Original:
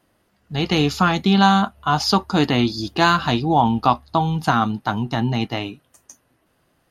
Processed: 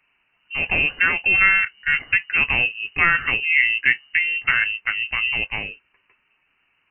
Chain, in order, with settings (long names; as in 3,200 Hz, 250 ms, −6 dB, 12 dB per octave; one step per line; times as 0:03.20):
low-shelf EQ 170 Hz −3 dB
voice inversion scrambler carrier 2,900 Hz
level −1 dB